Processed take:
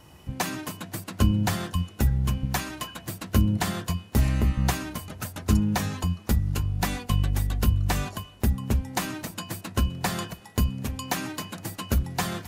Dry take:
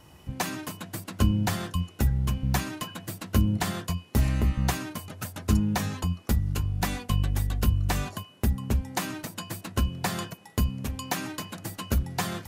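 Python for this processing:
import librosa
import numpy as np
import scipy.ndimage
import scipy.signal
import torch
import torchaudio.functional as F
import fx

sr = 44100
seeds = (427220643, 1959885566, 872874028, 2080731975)

y = fx.low_shelf(x, sr, hz=240.0, db=-9.0, at=(2.45, 3.06))
y = fx.echo_feedback(y, sr, ms=259, feedback_pct=59, wet_db=-24.0)
y = y * 10.0 ** (1.5 / 20.0)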